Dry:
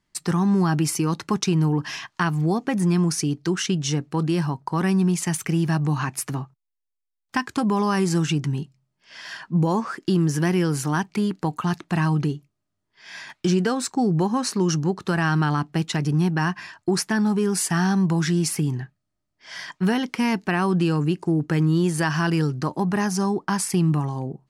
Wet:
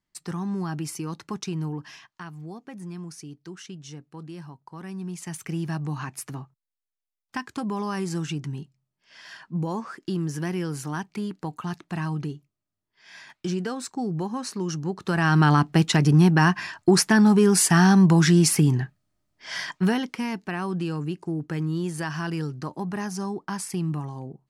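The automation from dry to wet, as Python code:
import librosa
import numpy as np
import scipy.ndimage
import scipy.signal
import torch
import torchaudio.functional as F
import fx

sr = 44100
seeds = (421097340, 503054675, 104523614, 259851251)

y = fx.gain(x, sr, db=fx.line((1.69, -9.5), (2.22, -17.0), (4.82, -17.0), (5.53, -7.5), (14.78, -7.5), (15.49, 4.5), (19.56, 4.5), (20.28, -7.5)))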